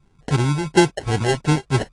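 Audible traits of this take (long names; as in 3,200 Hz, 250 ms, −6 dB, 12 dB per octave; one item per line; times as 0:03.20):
phaser sweep stages 6, 2.9 Hz, lowest notch 240–1,100 Hz
aliases and images of a low sample rate 1,200 Hz, jitter 0%
AAC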